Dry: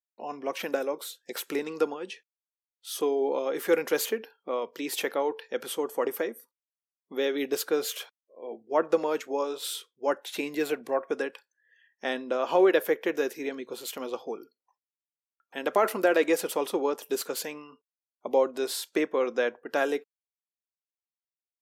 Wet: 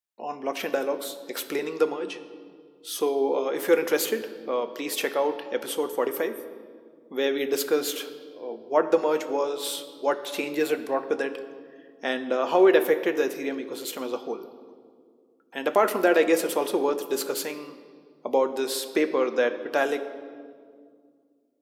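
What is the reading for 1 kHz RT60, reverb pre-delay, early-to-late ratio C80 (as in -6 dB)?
1.8 s, 8 ms, 13.0 dB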